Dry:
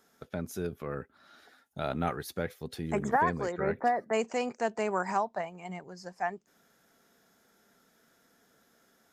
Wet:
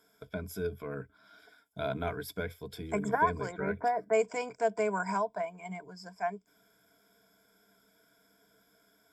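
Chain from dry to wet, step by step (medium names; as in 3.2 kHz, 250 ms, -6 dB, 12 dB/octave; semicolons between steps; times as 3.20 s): rippled EQ curve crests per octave 1.7, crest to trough 15 dB; trim -4 dB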